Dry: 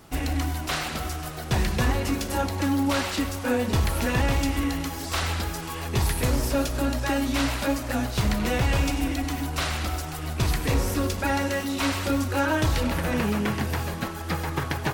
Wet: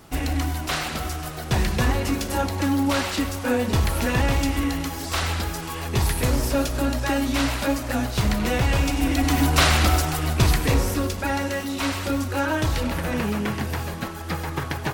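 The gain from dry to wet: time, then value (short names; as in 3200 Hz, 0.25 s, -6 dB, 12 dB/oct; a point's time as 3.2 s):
8.91 s +2 dB
9.42 s +10 dB
9.96 s +10 dB
11.14 s 0 dB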